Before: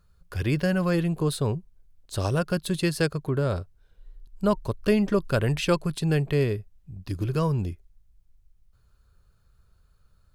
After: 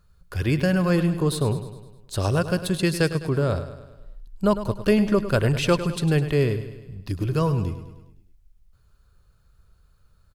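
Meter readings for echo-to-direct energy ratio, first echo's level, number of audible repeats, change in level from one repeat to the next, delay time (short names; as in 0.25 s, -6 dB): -10.5 dB, -12.0 dB, 5, -5.5 dB, 0.103 s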